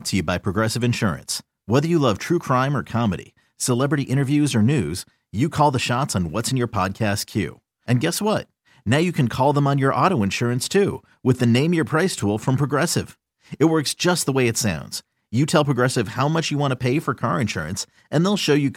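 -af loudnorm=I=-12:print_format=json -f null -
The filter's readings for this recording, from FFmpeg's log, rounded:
"input_i" : "-21.2",
"input_tp" : "-3.7",
"input_lra" : "1.7",
"input_thresh" : "-31.4",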